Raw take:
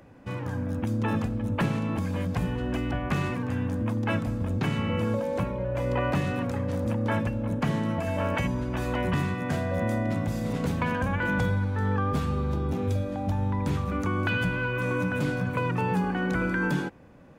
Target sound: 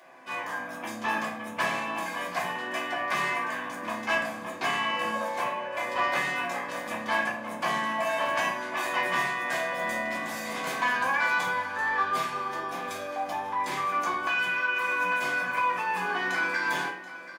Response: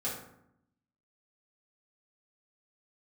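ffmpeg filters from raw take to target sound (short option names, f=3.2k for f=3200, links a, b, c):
-filter_complex "[0:a]highpass=910,asettb=1/sr,asplit=3[a][b][c];[a]atrim=end=14.134[d];[b]atrim=start=14.13:end=16.01,asetpts=PTS-STARTPTS,afade=t=in:d=0.004:c=qsin,afade=t=out:st=1.876:d=0.004:c=qsin,acompressor=threshold=-35dB:ratio=3[e];[c]atrim=start=16.006[f];[d][e]acrossfade=d=0.004:c1=hsin:c2=qsin[g];[g][f]acrossfade=d=0.004:c1=qsin:c2=hsin,asoftclip=type=tanh:threshold=-29dB,aecho=1:1:732:0.178[h];[1:a]atrim=start_sample=2205,afade=t=out:st=0.25:d=0.01,atrim=end_sample=11466,asetrate=61740,aresample=44100[i];[h][i]afir=irnorm=-1:irlink=0,volume=8.5dB"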